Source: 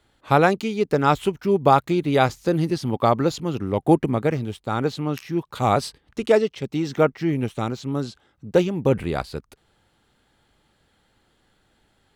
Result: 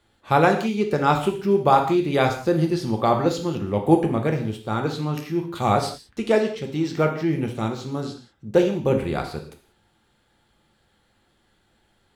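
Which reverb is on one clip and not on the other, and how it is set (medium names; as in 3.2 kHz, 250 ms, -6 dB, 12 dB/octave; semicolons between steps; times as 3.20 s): gated-style reverb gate 210 ms falling, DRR 3 dB; trim -2 dB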